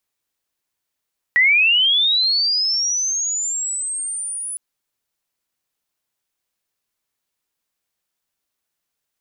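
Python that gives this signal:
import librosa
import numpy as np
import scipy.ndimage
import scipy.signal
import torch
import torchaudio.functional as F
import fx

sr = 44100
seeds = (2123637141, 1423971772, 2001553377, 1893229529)

y = fx.chirp(sr, length_s=3.21, from_hz=1900.0, to_hz=10000.0, law='linear', from_db=-10.5, to_db=-25.0)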